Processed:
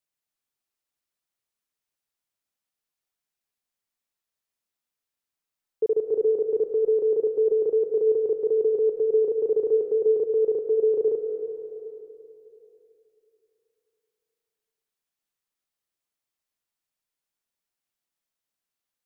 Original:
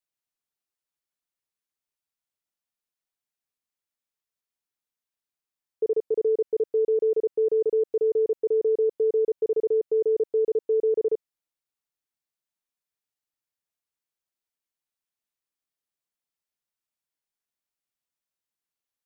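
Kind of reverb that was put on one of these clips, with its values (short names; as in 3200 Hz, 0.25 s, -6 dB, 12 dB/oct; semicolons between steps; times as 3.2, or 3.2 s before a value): digital reverb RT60 3.2 s, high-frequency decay 0.9×, pre-delay 0.105 s, DRR 4.5 dB; gain +1.5 dB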